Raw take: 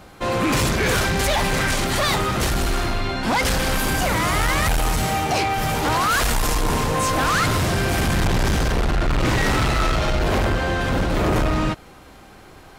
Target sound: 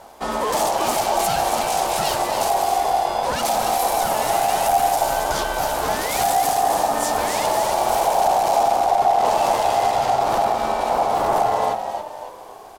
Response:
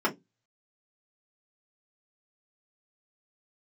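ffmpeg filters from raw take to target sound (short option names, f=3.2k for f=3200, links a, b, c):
-filter_complex "[0:a]equalizer=f=1.3k:w=0.39:g=-13.5,asplit=2[a][b];[b]acompressor=threshold=-26dB:ratio=6,volume=-2dB[c];[a][c]amix=inputs=2:normalize=0,asplit=6[d][e][f][g][h][i];[e]adelay=276,afreqshift=-95,volume=-7dB[j];[f]adelay=552,afreqshift=-190,volume=-14.1dB[k];[g]adelay=828,afreqshift=-285,volume=-21.3dB[l];[h]adelay=1104,afreqshift=-380,volume=-28.4dB[m];[i]adelay=1380,afreqshift=-475,volume=-35.5dB[n];[d][j][k][l][m][n]amix=inputs=6:normalize=0,aeval=exprs='val(0)*sin(2*PI*750*n/s)':c=same,asettb=1/sr,asplit=3[o][p][q];[o]atrim=end=7.724[r];[p]atrim=start=7.72:end=8.2,asetpts=PTS-STARTPTS,afade=t=in:d=0.004:c=qsin,afade=t=out:st=0.476:d=0.004:c=qsin,acrusher=bits=8:dc=4:mix=0:aa=0.000001[s];[q]atrim=start=8.196[t];[r][s]acrossfade=d=0.004:c1=hsin:c2=qsin[u];[u][t]acrossfade=d=0.004:c1=qsin:c2=hsin,volume=2dB"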